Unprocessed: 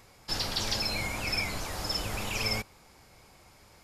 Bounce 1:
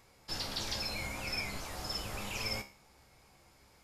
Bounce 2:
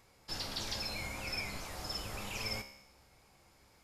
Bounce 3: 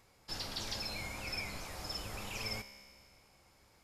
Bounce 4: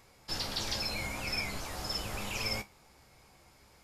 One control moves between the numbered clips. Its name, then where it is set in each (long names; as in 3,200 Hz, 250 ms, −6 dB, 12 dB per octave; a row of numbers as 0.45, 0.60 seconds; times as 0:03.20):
tuned comb filter, decay: 0.41, 0.89, 2.1, 0.18 seconds